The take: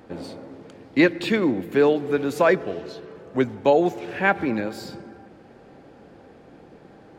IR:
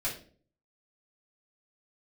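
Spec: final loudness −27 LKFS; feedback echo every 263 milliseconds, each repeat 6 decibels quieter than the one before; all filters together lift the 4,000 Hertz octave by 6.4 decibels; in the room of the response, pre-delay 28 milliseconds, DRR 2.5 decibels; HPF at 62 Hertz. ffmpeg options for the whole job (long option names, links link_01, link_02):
-filter_complex "[0:a]highpass=62,equalizer=frequency=4000:width_type=o:gain=7.5,aecho=1:1:263|526|789|1052|1315|1578:0.501|0.251|0.125|0.0626|0.0313|0.0157,asplit=2[link_01][link_02];[1:a]atrim=start_sample=2205,adelay=28[link_03];[link_02][link_03]afir=irnorm=-1:irlink=0,volume=-7dB[link_04];[link_01][link_04]amix=inputs=2:normalize=0,volume=-8.5dB"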